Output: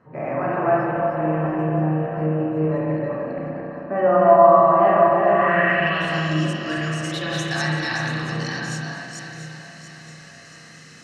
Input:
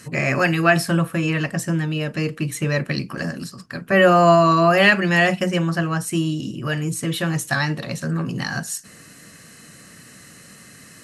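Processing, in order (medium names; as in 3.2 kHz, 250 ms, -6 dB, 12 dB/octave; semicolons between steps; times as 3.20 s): chunks repeated in reverse 242 ms, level -1 dB; in parallel at -2 dB: level held to a coarse grid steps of 23 dB; on the sum: bass shelf 300 Hz -6 dB; on a send: echo whose repeats swap between lows and highs 342 ms, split 990 Hz, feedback 68%, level -7.5 dB; on the sum: spring tank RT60 1.8 s, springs 32/45 ms, chirp 50 ms, DRR -4.5 dB; low-pass sweep 870 Hz -> 5.6 kHz, 5.31–6.25 s; trim -11.5 dB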